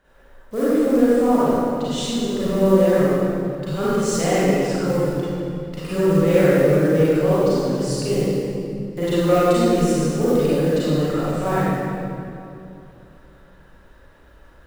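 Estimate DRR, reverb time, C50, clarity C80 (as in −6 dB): −11.5 dB, 2.6 s, −7.0 dB, −3.5 dB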